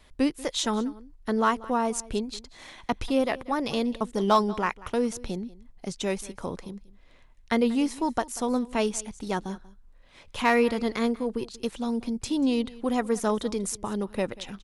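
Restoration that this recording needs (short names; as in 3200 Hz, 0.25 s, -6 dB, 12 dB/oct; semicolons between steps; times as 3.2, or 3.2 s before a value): clip repair -12 dBFS; inverse comb 0.188 s -20 dB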